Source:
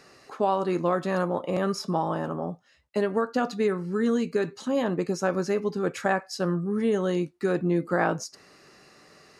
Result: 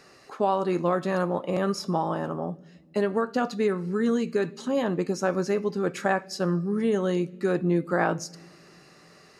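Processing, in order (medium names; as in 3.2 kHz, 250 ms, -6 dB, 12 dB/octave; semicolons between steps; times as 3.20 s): on a send: peaking EQ 990 Hz -13 dB 1.8 oct + reverberation RT60 1.7 s, pre-delay 5 ms, DRR 22 dB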